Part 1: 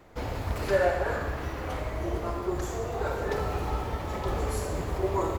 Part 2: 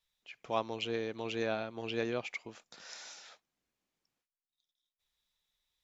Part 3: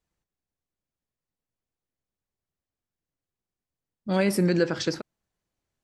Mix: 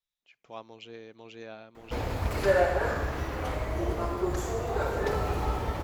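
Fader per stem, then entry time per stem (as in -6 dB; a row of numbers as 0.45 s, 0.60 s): +1.0 dB, -9.5 dB, mute; 1.75 s, 0.00 s, mute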